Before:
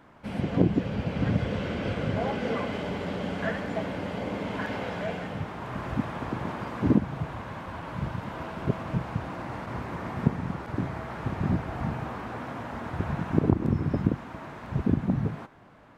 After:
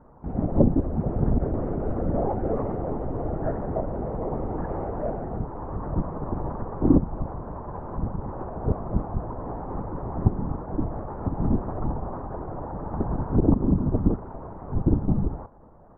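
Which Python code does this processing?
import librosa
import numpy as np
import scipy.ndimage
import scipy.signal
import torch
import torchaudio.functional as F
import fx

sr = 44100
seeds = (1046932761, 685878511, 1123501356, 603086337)

y = scipy.signal.sosfilt(scipy.signal.butter(4, 1000.0, 'lowpass', fs=sr, output='sos'), x)
y = fx.lpc_vocoder(y, sr, seeds[0], excitation='whisper', order=10)
y = y * librosa.db_to_amplitude(4.0)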